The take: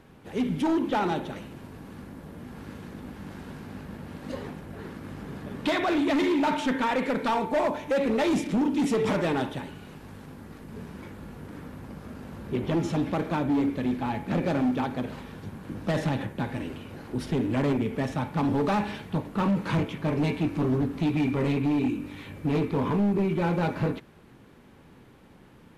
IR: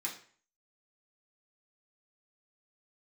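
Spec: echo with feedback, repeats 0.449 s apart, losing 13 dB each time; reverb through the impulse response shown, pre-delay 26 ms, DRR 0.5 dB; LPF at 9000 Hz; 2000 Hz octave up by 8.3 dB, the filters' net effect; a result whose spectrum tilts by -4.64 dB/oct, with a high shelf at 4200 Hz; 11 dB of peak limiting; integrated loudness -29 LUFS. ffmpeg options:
-filter_complex "[0:a]lowpass=9k,equalizer=f=2k:t=o:g=8.5,highshelf=f=4.2k:g=8.5,alimiter=limit=-22.5dB:level=0:latency=1,aecho=1:1:449|898|1347:0.224|0.0493|0.0108,asplit=2[a][b];[1:a]atrim=start_sample=2205,adelay=26[c];[b][c]afir=irnorm=-1:irlink=0,volume=-2dB[d];[a][d]amix=inputs=2:normalize=0,volume=-0.5dB"

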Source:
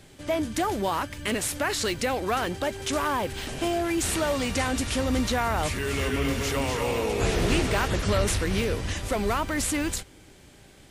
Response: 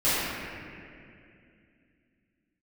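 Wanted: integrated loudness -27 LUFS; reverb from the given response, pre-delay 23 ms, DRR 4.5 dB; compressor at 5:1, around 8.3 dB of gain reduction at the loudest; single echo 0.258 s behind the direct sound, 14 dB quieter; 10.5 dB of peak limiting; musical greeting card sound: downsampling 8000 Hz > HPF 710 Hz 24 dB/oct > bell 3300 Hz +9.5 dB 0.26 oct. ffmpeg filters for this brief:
-filter_complex "[0:a]acompressor=threshold=-29dB:ratio=5,alimiter=level_in=4dB:limit=-24dB:level=0:latency=1,volume=-4dB,aecho=1:1:258:0.2,asplit=2[a][b];[1:a]atrim=start_sample=2205,adelay=23[c];[b][c]afir=irnorm=-1:irlink=0,volume=-20.5dB[d];[a][d]amix=inputs=2:normalize=0,aresample=8000,aresample=44100,highpass=f=710:w=0.5412,highpass=f=710:w=1.3066,equalizer=f=3.3k:t=o:w=0.26:g=9.5,volume=11.5dB"

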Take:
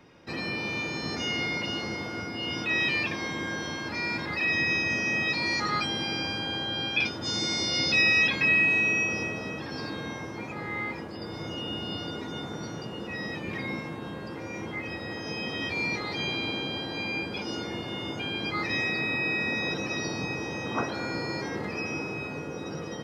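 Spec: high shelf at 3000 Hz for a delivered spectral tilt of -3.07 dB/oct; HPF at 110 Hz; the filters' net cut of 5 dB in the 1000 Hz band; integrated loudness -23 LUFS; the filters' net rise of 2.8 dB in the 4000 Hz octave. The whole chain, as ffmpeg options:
-af "highpass=110,equalizer=f=1k:t=o:g=-6.5,highshelf=f=3k:g=-4.5,equalizer=f=4k:t=o:g=7.5,volume=5dB"

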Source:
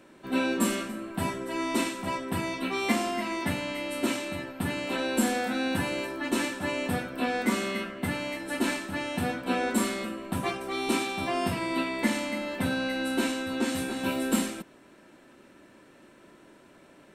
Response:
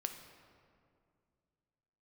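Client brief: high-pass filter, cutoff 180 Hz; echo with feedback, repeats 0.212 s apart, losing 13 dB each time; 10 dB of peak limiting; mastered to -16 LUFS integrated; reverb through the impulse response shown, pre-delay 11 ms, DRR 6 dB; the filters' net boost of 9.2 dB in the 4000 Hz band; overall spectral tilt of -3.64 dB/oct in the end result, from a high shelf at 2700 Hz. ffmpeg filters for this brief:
-filter_complex "[0:a]highpass=180,highshelf=f=2.7k:g=3.5,equalizer=f=4k:t=o:g=8.5,alimiter=limit=-21dB:level=0:latency=1,aecho=1:1:212|424|636:0.224|0.0493|0.0108,asplit=2[a][b];[1:a]atrim=start_sample=2205,adelay=11[c];[b][c]afir=irnorm=-1:irlink=0,volume=-5.5dB[d];[a][d]amix=inputs=2:normalize=0,volume=12.5dB"

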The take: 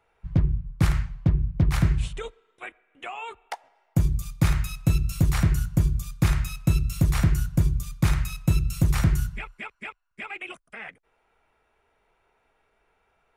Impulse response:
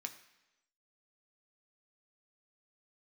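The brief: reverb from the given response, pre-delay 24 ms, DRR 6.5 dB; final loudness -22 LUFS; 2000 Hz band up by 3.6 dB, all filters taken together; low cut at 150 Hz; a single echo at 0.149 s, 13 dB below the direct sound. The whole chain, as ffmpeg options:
-filter_complex "[0:a]highpass=150,equalizer=f=2k:t=o:g=4.5,aecho=1:1:149:0.224,asplit=2[a][b];[1:a]atrim=start_sample=2205,adelay=24[c];[b][c]afir=irnorm=-1:irlink=0,volume=-4.5dB[d];[a][d]amix=inputs=2:normalize=0,volume=8.5dB"

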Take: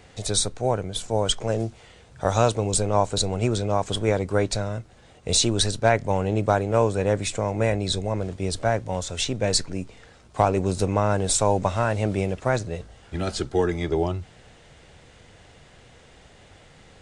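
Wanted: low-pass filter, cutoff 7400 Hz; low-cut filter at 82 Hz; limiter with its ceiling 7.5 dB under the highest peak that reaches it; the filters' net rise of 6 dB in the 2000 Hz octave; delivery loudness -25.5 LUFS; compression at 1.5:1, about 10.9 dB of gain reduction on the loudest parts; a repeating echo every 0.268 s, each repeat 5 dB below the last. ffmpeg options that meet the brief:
-af "highpass=82,lowpass=7.4k,equalizer=f=2k:t=o:g=8,acompressor=threshold=-44dB:ratio=1.5,alimiter=limit=-20dB:level=0:latency=1,aecho=1:1:268|536|804|1072|1340|1608|1876:0.562|0.315|0.176|0.0988|0.0553|0.031|0.0173,volume=7.5dB"

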